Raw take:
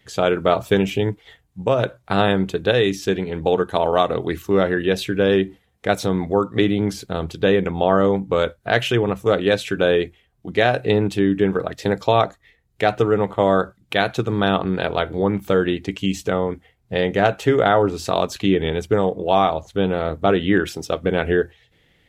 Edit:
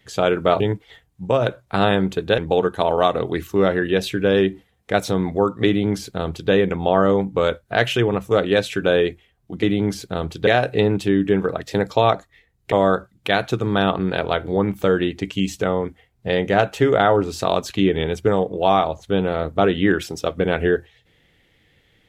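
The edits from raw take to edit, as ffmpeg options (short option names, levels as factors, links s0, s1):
-filter_complex "[0:a]asplit=6[s0][s1][s2][s3][s4][s5];[s0]atrim=end=0.602[s6];[s1]atrim=start=0.968:end=2.752[s7];[s2]atrim=start=3.328:end=10.582[s8];[s3]atrim=start=6.618:end=7.462[s9];[s4]atrim=start=10.578:end=12.832[s10];[s5]atrim=start=13.378[s11];[s6][s7]acrossfade=d=0.004:c1=hsin:c2=hsin[s12];[s12][s8]acrossfade=d=0.004:c1=hsin:c2=hsin[s13];[s13][s9]acrossfade=d=0.004:c1=hsin:c2=hsin[s14];[s14][s10]acrossfade=d=0.004:c1=hsin:c2=hsin[s15];[s15][s11]acrossfade=d=0.004:c1=hsin:c2=hsin"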